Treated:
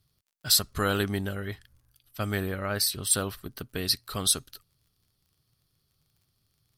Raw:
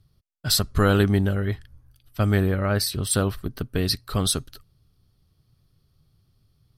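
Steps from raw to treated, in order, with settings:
surface crackle 45 per second −55 dBFS
spectral tilt +2 dB per octave
level −5 dB

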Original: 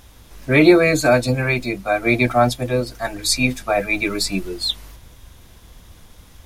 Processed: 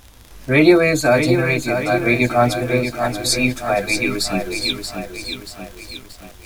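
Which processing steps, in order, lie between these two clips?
surface crackle 67 per second −28 dBFS
feedback echo at a low word length 631 ms, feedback 55%, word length 7 bits, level −7 dB

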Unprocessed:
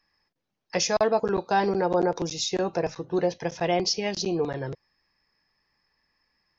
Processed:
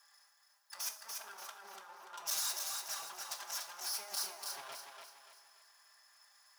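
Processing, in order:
lower of the sound and its delayed copy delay 5 ms
high-pass filter 160 Hz 6 dB per octave
flat-topped bell 1,000 Hz +14.5 dB
compressor whose output falls as the input rises −33 dBFS, ratio −1
soft clipping −27 dBFS, distortion −8 dB
first difference
on a send: feedback echo with a high-pass in the loop 290 ms, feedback 39%, high-pass 330 Hz, level −4.5 dB
on the sum: coupled-rooms reverb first 0.42 s, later 3 s, from −18 dB, DRR 6.5 dB
level −1.5 dB

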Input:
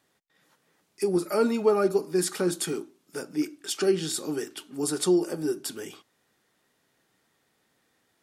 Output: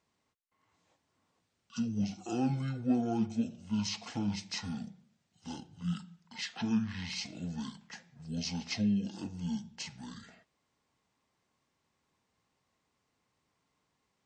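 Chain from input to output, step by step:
wrong playback speed 78 rpm record played at 45 rpm
level −8.5 dB

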